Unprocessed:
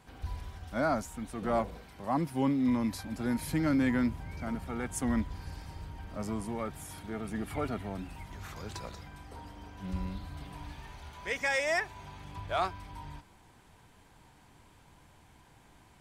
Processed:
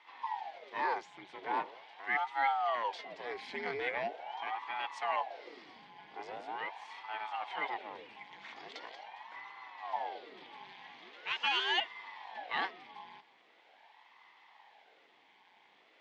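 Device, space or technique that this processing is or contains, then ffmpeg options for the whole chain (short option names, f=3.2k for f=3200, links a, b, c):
voice changer toy: -af "aeval=exprs='val(0)*sin(2*PI*590*n/s+590*0.85/0.42*sin(2*PI*0.42*n/s))':c=same,highpass=560,equalizer=f=580:t=q:w=4:g=-6,equalizer=f=840:t=q:w=4:g=6,equalizer=f=1.3k:t=q:w=4:g=-8,equalizer=f=2.1k:t=q:w=4:g=8,equalizer=f=3.3k:t=q:w=4:g=6,lowpass=f=4.6k:w=0.5412,lowpass=f=4.6k:w=1.3066"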